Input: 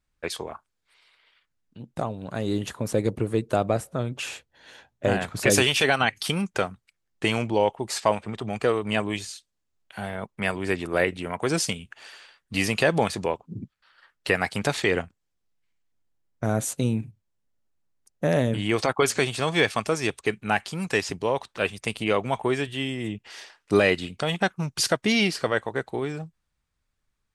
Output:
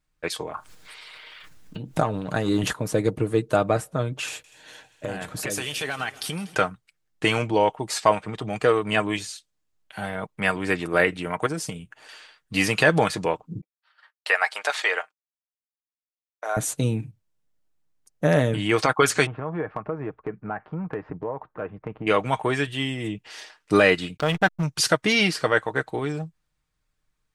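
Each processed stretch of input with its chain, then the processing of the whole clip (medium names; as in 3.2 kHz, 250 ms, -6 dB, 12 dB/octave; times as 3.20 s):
0.54–2.73 s: upward compressor, threshold -32 dBFS + transient shaper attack +6 dB, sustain +10 dB
4.28–6.55 s: treble shelf 8.4 kHz +9.5 dB + compression 3:1, threshold -31 dBFS + multi-head delay 80 ms, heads second and third, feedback 60%, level -20.5 dB
11.46–12.09 s: peaking EQ 3.7 kHz -8 dB 2.6 oct + compression, threshold -28 dBFS
13.61–16.57 s: high-pass 590 Hz 24 dB/octave + expander -56 dBFS + treble shelf 6.2 kHz -6.5 dB
19.26–22.07 s: low-pass 1.4 kHz 24 dB/octave + compression 3:1, threshold -29 dBFS
24.17–24.63 s: block-companded coder 7-bit + hysteresis with a dead band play -28 dBFS + treble shelf 7.8 kHz -5.5 dB
whole clip: comb 6.5 ms, depth 40%; dynamic bell 1.4 kHz, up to +5 dB, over -37 dBFS, Q 1.5; trim +1 dB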